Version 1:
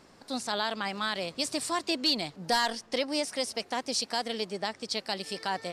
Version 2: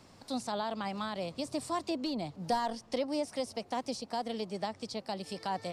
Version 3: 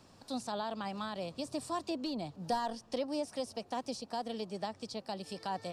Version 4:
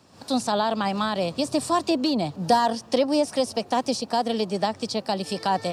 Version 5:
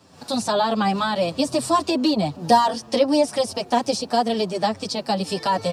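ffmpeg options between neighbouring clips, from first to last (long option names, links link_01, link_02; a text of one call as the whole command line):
ffmpeg -i in.wav -filter_complex "[0:a]equalizer=frequency=100:width_type=o:width=0.67:gain=9,equalizer=frequency=400:width_type=o:width=0.67:gain=-4,equalizer=frequency=1600:width_type=o:width=0.67:gain=-5,acrossover=split=210|1200[link_01][link_02][link_03];[link_03]acompressor=threshold=-43dB:ratio=6[link_04];[link_01][link_02][link_04]amix=inputs=3:normalize=0" out.wav
ffmpeg -i in.wav -af "bandreject=frequency=2100:width=8.8,volume=-2.5dB" out.wav
ffmpeg -i in.wav -af "highpass=80,dynaudnorm=framelen=110:gausssize=3:maxgain=11dB,volume=3dB" out.wav
ffmpeg -i in.wav -filter_complex "[0:a]asplit=2[link_01][link_02];[link_02]adelay=7.1,afreqshift=-2.3[link_03];[link_01][link_03]amix=inputs=2:normalize=1,volume=6dB" out.wav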